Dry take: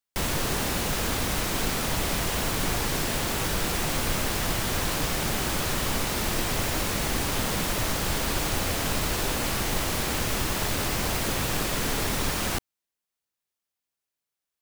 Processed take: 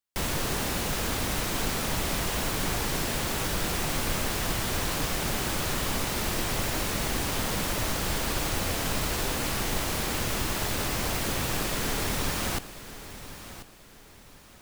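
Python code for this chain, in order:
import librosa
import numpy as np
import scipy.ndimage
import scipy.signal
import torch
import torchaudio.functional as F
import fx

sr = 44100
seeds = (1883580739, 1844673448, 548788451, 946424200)

y = fx.echo_feedback(x, sr, ms=1039, feedback_pct=35, wet_db=-14)
y = F.gain(torch.from_numpy(y), -2.0).numpy()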